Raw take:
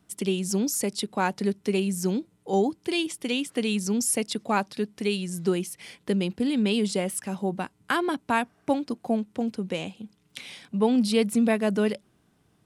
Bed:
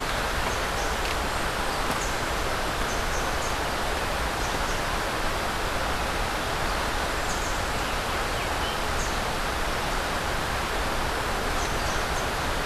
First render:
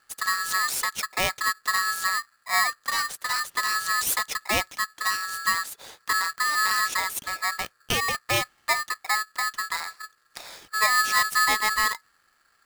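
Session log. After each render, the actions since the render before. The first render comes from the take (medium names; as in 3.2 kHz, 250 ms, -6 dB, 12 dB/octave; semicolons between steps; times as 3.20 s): polarity switched at an audio rate 1.5 kHz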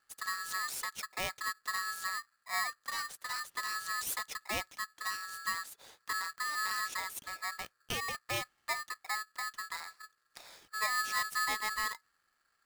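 trim -11.5 dB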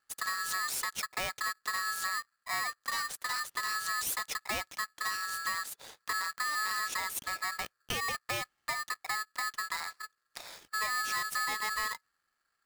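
waveshaping leveller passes 2; compression, threshold -31 dBFS, peak gain reduction 6 dB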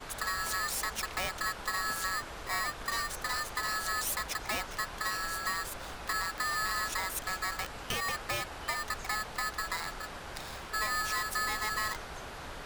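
add bed -16 dB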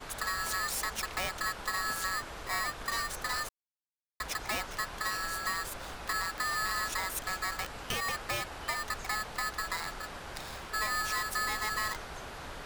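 3.49–4.20 s: mute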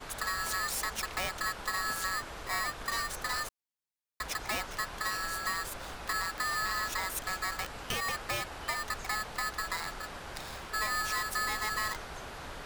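6.60–7.01 s: careless resampling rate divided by 2×, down filtered, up hold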